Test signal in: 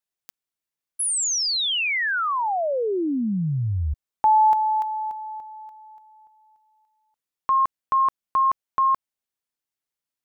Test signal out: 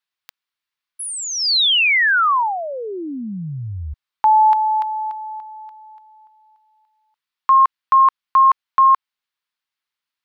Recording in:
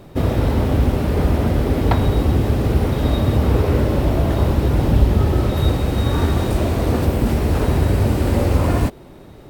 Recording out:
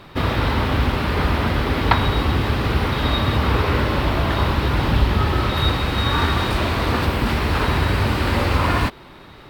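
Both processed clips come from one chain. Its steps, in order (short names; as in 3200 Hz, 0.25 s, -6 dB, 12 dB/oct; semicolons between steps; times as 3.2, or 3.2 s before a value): band shelf 2100 Hz +12 dB 2.7 oct; gain -3.5 dB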